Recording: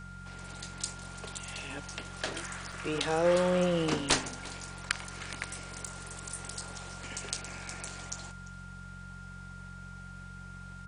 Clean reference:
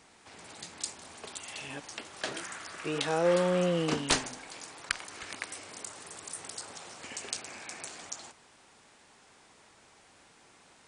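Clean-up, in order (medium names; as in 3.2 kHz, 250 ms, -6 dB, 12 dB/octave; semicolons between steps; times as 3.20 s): de-hum 45.6 Hz, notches 4; band-stop 1.4 kHz, Q 30; interpolate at 2.72/5.87 s, 3.9 ms; inverse comb 346 ms -20 dB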